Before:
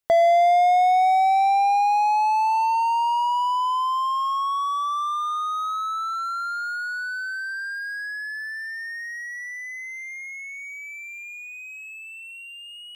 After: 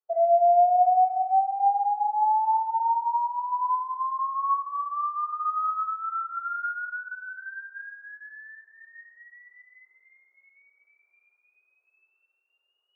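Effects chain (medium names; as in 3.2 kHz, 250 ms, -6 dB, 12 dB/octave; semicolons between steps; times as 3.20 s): spectral contrast enhancement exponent 1.9; companded quantiser 8-bit; elliptic band-pass 380–1400 Hz, stop band 60 dB; reverberation, pre-delay 3 ms, DRR -5 dB; trim -8.5 dB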